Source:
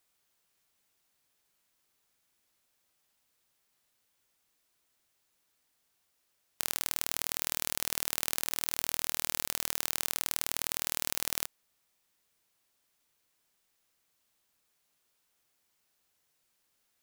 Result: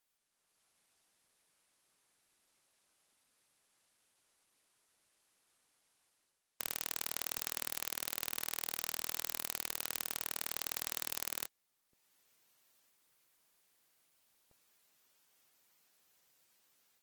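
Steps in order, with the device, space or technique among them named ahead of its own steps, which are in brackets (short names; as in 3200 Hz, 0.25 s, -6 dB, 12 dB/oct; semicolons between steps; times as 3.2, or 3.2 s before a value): video call (HPF 130 Hz 6 dB/oct; AGC gain up to 10 dB; gain -6.5 dB; Opus 20 kbps 48000 Hz)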